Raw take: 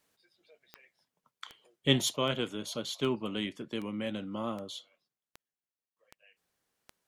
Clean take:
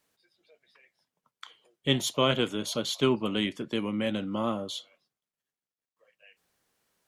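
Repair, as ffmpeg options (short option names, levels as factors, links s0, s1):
-af "adeclick=t=4,asetnsamples=n=441:p=0,asendcmd='2.16 volume volume 6dB',volume=1"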